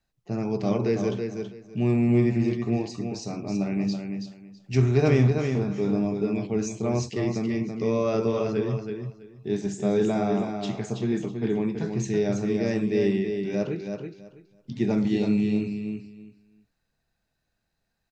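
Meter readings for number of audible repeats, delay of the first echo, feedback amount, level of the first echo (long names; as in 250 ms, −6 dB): 3, 327 ms, 20%, −6.0 dB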